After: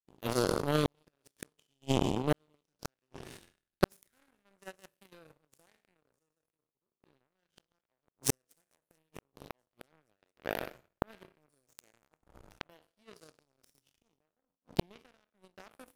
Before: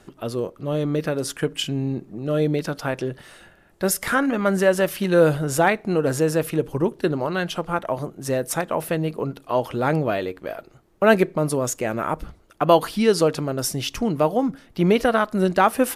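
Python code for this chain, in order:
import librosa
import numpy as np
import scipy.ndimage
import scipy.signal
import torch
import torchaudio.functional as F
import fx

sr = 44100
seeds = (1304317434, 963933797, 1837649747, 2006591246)

y = fx.spec_trails(x, sr, decay_s=0.95)
y = fx.gate_flip(y, sr, shuts_db=-14.0, range_db=-27)
y = fx.peak_eq(y, sr, hz=1000.0, db=-13.0, octaves=1.2)
y = fx.echo_thinned(y, sr, ms=225, feedback_pct=85, hz=620.0, wet_db=-23.5)
y = fx.power_curve(y, sr, exponent=3.0)
y = fx.transient(y, sr, attack_db=6, sustain_db=-11)
y = fx.sustainer(y, sr, db_per_s=25.0)
y = y * librosa.db_to_amplitude(4.0)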